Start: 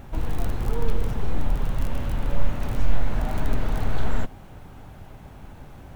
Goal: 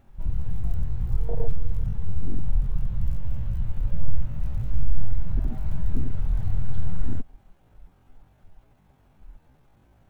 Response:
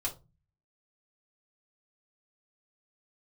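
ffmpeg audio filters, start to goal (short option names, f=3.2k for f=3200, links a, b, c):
-af "atempo=0.59,afwtdn=0.1,volume=1dB"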